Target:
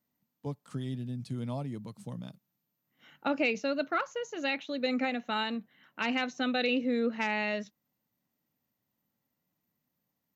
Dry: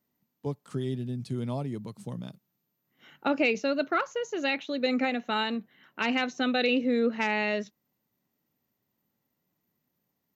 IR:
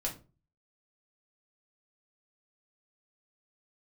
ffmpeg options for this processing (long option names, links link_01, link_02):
-af "equalizer=frequency=390:width_type=o:width=0.21:gain=-9.5,volume=-3dB"